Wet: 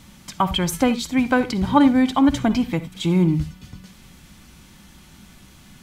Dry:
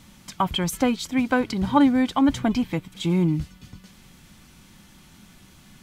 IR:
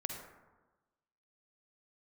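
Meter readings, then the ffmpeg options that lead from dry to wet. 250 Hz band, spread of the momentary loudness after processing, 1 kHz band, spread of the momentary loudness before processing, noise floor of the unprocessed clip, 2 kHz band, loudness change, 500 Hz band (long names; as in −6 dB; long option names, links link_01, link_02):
+3.0 dB, 9 LU, +3.0 dB, 9 LU, −52 dBFS, +3.0 dB, +3.0 dB, +3.0 dB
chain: -filter_complex "[0:a]asplit=2[link_01][link_02];[link_02]equalizer=frequency=61:width_type=o:width=0.23:gain=14.5[link_03];[1:a]atrim=start_sample=2205,atrim=end_sample=4410[link_04];[link_03][link_04]afir=irnorm=-1:irlink=0,volume=-3.5dB[link_05];[link_01][link_05]amix=inputs=2:normalize=0,volume=-1dB"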